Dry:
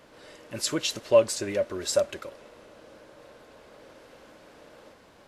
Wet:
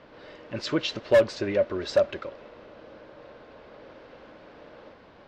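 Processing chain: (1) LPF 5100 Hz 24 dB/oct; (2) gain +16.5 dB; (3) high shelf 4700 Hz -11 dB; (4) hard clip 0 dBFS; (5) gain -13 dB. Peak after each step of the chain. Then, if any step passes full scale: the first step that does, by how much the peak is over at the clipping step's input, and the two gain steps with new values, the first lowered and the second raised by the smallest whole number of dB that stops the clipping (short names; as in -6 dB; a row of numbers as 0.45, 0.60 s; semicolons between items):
-8.0, +8.5, +8.5, 0.0, -13.0 dBFS; step 2, 8.5 dB; step 2 +7.5 dB, step 5 -4 dB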